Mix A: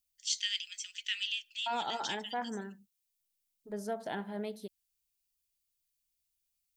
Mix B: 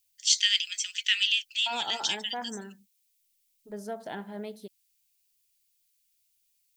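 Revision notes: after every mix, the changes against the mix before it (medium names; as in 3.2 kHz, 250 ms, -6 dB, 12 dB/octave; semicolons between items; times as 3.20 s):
first voice +11.0 dB; reverb: off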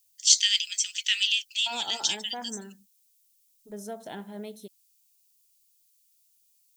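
second voice: add Butterworth band-stop 4.7 kHz, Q 6.5; master: add FFT filter 250 Hz 0 dB, 1.7 kHz -4 dB, 6.4 kHz +6 dB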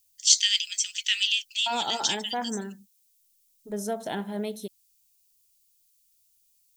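second voice +7.5 dB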